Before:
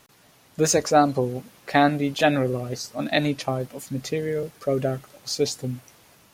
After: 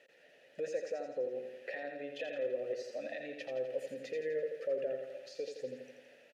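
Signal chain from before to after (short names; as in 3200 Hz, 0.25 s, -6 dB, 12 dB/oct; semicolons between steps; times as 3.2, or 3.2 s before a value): low shelf 120 Hz -11 dB; compressor, threshold -31 dBFS, peak gain reduction 17.5 dB; limiter -26.5 dBFS, peak gain reduction 12.5 dB; vowel filter e; feedback echo 84 ms, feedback 56%, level -6 dB; gain +6.5 dB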